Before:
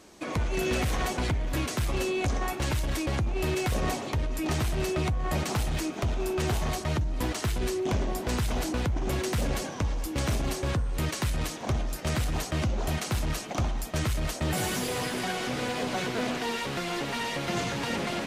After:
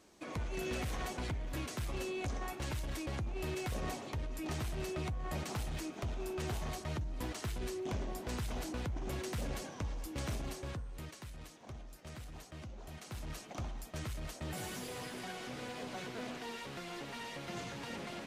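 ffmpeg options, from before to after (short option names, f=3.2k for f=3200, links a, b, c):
-af "volume=-3.5dB,afade=t=out:st=10.29:d=0.91:silence=0.334965,afade=t=in:st=12.92:d=0.47:silence=0.446684"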